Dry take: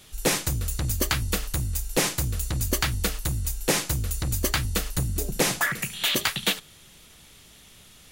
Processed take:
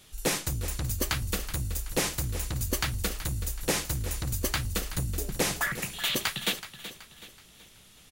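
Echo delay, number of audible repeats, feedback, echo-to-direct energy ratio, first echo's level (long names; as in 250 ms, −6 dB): 376 ms, 3, 42%, −12.0 dB, −13.0 dB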